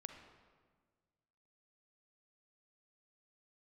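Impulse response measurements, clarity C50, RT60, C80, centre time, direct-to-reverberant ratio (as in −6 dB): 5.5 dB, 1.6 s, 7.5 dB, 34 ms, 5.0 dB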